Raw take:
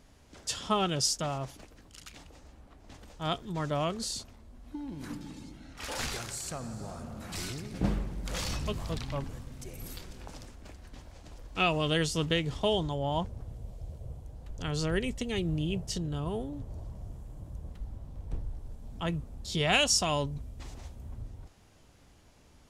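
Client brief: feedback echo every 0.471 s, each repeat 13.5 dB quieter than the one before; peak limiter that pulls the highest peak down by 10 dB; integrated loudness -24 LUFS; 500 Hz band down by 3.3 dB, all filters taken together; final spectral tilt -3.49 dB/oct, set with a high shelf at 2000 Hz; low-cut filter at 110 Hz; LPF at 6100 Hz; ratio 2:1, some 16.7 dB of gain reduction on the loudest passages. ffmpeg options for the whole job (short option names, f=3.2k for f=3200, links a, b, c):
-af "highpass=110,lowpass=6.1k,equalizer=f=500:t=o:g=-5,highshelf=f=2k:g=8.5,acompressor=threshold=-49dB:ratio=2,alimiter=level_in=10dB:limit=-24dB:level=0:latency=1,volume=-10dB,aecho=1:1:471|942:0.211|0.0444,volume=22.5dB"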